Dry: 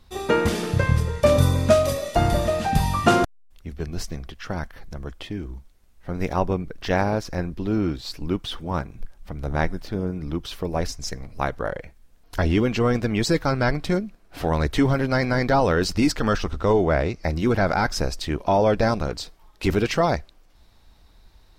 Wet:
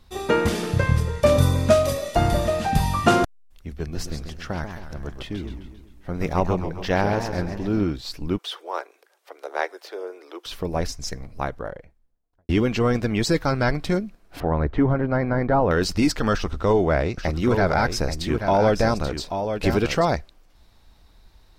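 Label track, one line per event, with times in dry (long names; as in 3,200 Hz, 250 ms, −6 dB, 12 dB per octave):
3.810000	7.840000	feedback echo with a swinging delay time 133 ms, feedback 52%, depth 215 cents, level −7.5 dB
8.380000	10.460000	Butterworth high-pass 380 Hz 48 dB per octave
11.030000	12.490000	fade out and dull
14.400000	15.710000	low-pass filter 1,400 Hz
16.340000	20.050000	single-tap delay 834 ms −7.5 dB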